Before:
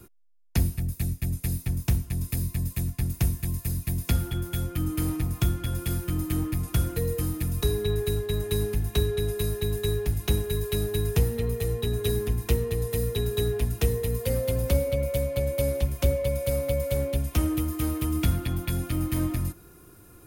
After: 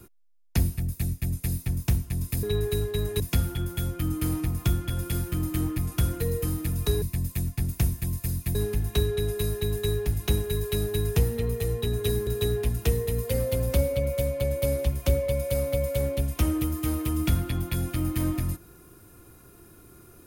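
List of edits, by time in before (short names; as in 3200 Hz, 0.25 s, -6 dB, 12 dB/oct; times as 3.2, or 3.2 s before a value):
2.43–3.96 swap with 7.78–8.55
12.27–13.23 cut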